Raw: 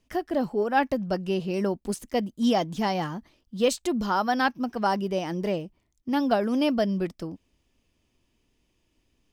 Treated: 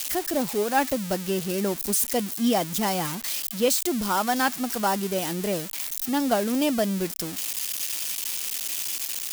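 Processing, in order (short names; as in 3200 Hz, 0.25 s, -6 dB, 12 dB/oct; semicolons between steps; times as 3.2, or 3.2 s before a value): switching spikes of -18.5 dBFS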